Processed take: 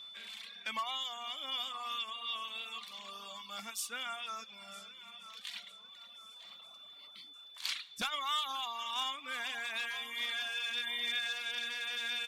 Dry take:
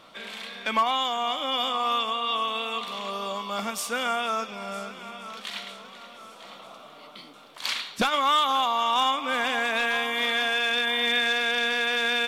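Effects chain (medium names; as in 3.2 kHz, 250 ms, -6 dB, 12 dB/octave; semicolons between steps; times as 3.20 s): whistle 3.5 kHz -39 dBFS; reverb removal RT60 1.3 s; amplifier tone stack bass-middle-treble 5-5-5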